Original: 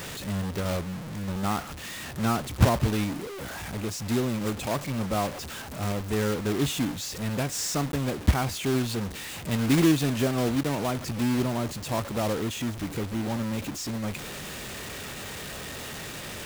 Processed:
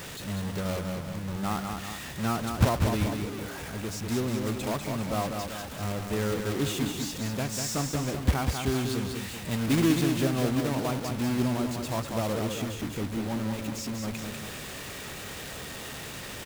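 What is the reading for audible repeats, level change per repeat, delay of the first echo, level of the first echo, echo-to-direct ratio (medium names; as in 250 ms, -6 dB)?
2, -5.5 dB, 195 ms, -5.0 dB, -4.0 dB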